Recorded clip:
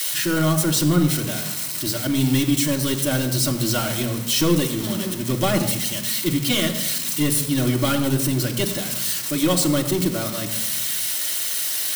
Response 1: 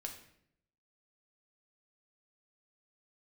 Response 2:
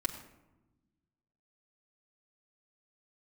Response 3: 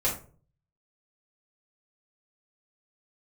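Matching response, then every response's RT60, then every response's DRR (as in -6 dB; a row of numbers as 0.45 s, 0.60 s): 2; 0.70 s, 1.0 s, 0.40 s; 2.0 dB, -1.0 dB, -7.5 dB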